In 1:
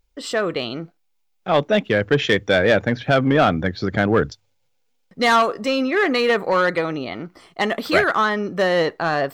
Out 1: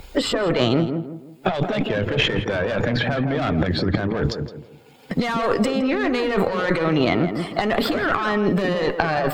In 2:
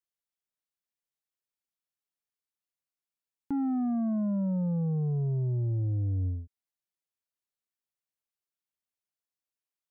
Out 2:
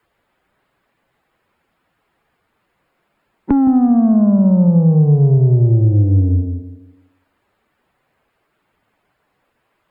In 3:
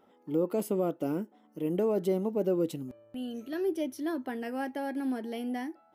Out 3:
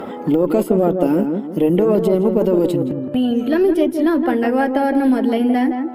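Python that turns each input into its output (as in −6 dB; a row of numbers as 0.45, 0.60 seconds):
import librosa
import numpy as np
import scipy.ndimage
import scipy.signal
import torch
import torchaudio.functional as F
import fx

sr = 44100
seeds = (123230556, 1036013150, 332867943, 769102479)

p1 = fx.spec_quant(x, sr, step_db=15)
p2 = fx.notch(p1, sr, hz=5900.0, q=5.7)
p3 = fx.tube_stage(p2, sr, drive_db=14.0, bias=0.55)
p4 = fx.high_shelf(p3, sr, hz=3600.0, db=-6.5)
p5 = fx.over_compress(p4, sr, threshold_db=-31.0, ratio=-1.0)
p6 = p5 + fx.echo_tape(p5, sr, ms=165, feedback_pct=28, wet_db=-5, lp_hz=1000.0, drive_db=19.0, wow_cents=26, dry=0)
p7 = fx.band_squash(p6, sr, depth_pct=70)
y = p7 * 10.0 ** (-2 / 20.0) / np.max(np.abs(p7))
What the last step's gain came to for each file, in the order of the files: +9.0, +18.5, +17.5 decibels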